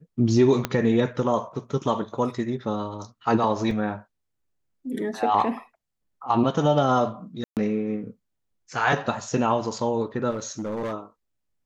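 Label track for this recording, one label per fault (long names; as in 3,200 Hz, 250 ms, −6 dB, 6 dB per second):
0.650000	0.650000	click −9 dBFS
3.710000	3.710000	drop-out 2.1 ms
7.440000	7.570000	drop-out 128 ms
10.300000	10.940000	clipping −25.5 dBFS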